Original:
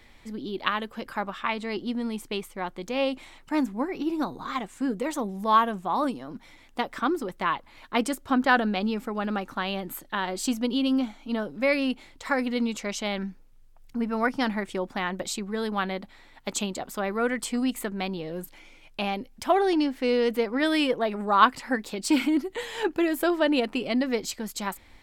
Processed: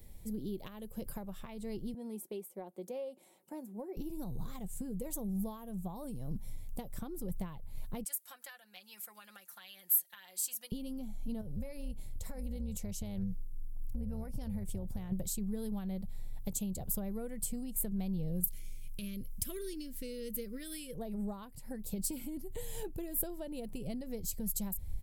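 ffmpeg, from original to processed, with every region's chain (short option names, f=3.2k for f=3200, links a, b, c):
-filter_complex "[0:a]asettb=1/sr,asplit=3[a][b][c];[a]atrim=end=1.944[d];[b]atrim=start=1.94:end=3.97,asetpts=PTS-STARTPTS,afade=t=in:d=0.004:c=qsin,afade=t=out:st=2.026:d=0.004:c=qsin,highpass=f=290:w=0.5412,highpass=f=290:w=1.3066,highshelf=f=2k:g=-11.5,aecho=1:1:5.4:0.44,atrim=end_sample=89523[e];[c]atrim=start=3.966[f];[d][e]acrossfade=d=0.004:c1=hsin:c2=qsin[g];[g][f]acrossfade=d=0.004:c1=qsin:c2=hsin,asettb=1/sr,asplit=3[h][i][j];[h]atrim=end=8.044[k];[i]atrim=start=8.04:end=10.72,asetpts=PTS-STARTPTS,afade=t=in:d=0.004:c=qsin,afade=t=out:st=2.676:d=0.004:c=qsin,highpass=f=1.7k:t=q:w=1.6,aecho=1:1:5.7:0.63,atrim=end_sample=118188[l];[j]atrim=start=10.716[m];[k][l]acrossfade=d=0.004:c1=hsin:c2=qsin[n];[n][m]acrossfade=d=0.004:c1=qsin:c2=hsin,asettb=1/sr,asplit=3[o][p][q];[o]atrim=end=11.414[r];[p]atrim=start=11.41:end=15.12,asetpts=PTS-STARTPTS,afade=t=in:d=0.004:c=qsin,afade=t=out:st=3.706:d=0.004:c=qsin,tremolo=f=300:d=0.462,acompressor=threshold=-36dB:ratio=4:attack=3.2:release=140:knee=1:detection=peak[s];[q]atrim=start=15.116[t];[r][s]acrossfade=d=0.004:c1=hsin:c2=qsin[u];[u][t]acrossfade=d=0.004:c1=qsin:c2=hsin,asettb=1/sr,asplit=3[v][w][x];[v]atrim=end=18.404[y];[w]atrim=start=18.4:end=20.95,asetpts=PTS-STARTPTS,afade=t=in:d=0.004:c=qsin,afade=t=out:st=2.546:d=0.004:c=qsin,asuperstop=centerf=810:order=4:qfactor=0.98,tiltshelf=f=1.1k:g=-4.5[z];[x]atrim=start=20.946[aa];[y][z]acrossfade=d=0.004:c1=hsin:c2=qsin[ab];[ab][aa]acrossfade=d=0.004:c1=qsin:c2=hsin,asubboost=boost=5:cutoff=130,acompressor=threshold=-34dB:ratio=6,firequalizer=gain_entry='entry(180,0);entry(260,-11);entry(460,-7);entry(1200,-25);entry(11000,8)':delay=0.05:min_phase=1,volume=4.5dB"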